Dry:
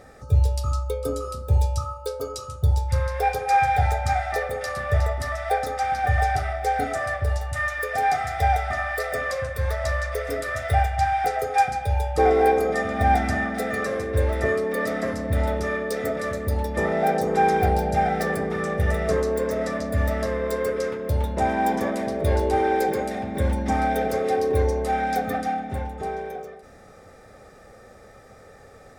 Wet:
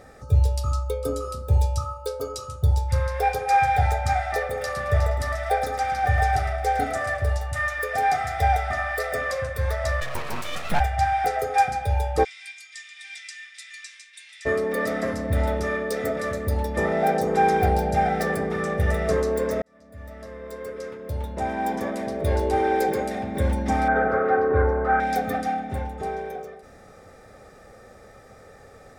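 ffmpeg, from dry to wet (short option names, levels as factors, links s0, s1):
-filter_complex "[0:a]asplit=3[s0][s1][s2];[s0]afade=t=out:st=4.56:d=0.02[s3];[s1]aecho=1:1:109|218|327:0.251|0.0754|0.0226,afade=t=in:st=4.56:d=0.02,afade=t=out:st=7.3:d=0.02[s4];[s2]afade=t=in:st=7.3:d=0.02[s5];[s3][s4][s5]amix=inputs=3:normalize=0,asplit=3[s6][s7][s8];[s6]afade=t=out:st=10:d=0.02[s9];[s7]aeval=exprs='abs(val(0))':c=same,afade=t=in:st=10:d=0.02,afade=t=out:st=10.79:d=0.02[s10];[s8]afade=t=in:st=10.79:d=0.02[s11];[s9][s10][s11]amix=inputs=3:normalize=0,asplit=3[s12][s13][s14];[s12]afade=t=out:st=12.23:d=0.02[s15];[s13]asuperpass=centerf=4800:order=8:qfactor=0.72,afade=t=in:st=12.23:d=0.02,afade=t=out:st=14.45:d=0.02[s16];[s14]afade=t=in:st=14.45:d=0.02[s17];[s15][s16][s17]amix=inputs=3:normalize=0,asettb=1/sr,asplit=3[s18][s19][s20];[s18]atrim=end=23.884[s21];[s19]atrim=start=23.88:end=25,asetpts=PTS-STARTPTS,afade=t=in:d=0.004:c=qsin,afade=t=out:st=1.116:d=0.004:c=qsin,lowpass=f=1400:t=q:w=6.7[s22];[s20]atrim=start=24.996[s23];[s21][s22]acrossfade=d=0.004:c1=hsin:c2=qsin[s24];[s24][s23]acrossfade=d=0.004:c1=qsin:c2=hsin,asplit=2[s25][s26];[s25]atrim=end=19.62,asetpts=PTS-STARTPTS,afade=t=out:st=19.616:d=0.004:c=hsin[s27];[s26]atrim=start=19.62,asetpts=PTS-STARTPTS,afade=t=in:d=3.21[s28];[s27][s28]concat=n=2:v=0:a=1"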